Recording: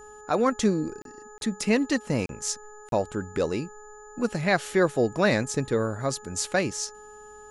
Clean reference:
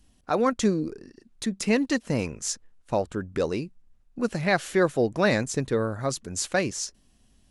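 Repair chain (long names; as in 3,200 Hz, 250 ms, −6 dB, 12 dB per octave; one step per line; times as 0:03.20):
hum removal 422.5 Hz, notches 4
notch filter 7,000 Hz, Q 30
repair the gap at 0:01.02/0:01.38/0:02.26/0:02.89, 32 ms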